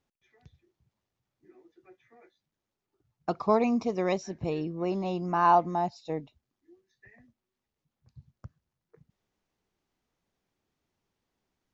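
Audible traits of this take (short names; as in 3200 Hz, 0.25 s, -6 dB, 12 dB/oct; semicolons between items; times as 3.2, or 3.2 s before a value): noise floor -87 dBFS; spectral tilt -3.5 dB/oct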